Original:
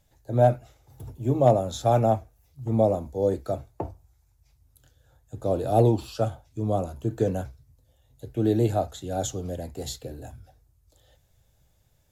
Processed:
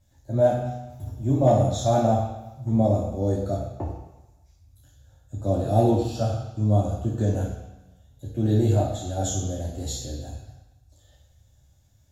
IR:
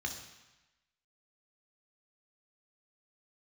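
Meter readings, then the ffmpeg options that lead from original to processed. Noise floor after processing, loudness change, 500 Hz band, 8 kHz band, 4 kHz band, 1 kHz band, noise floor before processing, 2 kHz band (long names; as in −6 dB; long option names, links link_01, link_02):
−59 dBFS, +1.0 dB, −0.5 dB, +4.5 dB, +2.0 dB, −0.5 dB, −65 dBFS, can't be measured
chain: -filter_complex "[0:a]asplit=2[link_01][link_02];[1:a]atrim=start_sample=2205,highshelf=frequency=2900:gain=4.5[link_03];[link_02][link_03]afir=irnorm=-1:irlink=0,volume=-1dB[link_04];[link_01][link_04]amix=inputs=2:normalize=0"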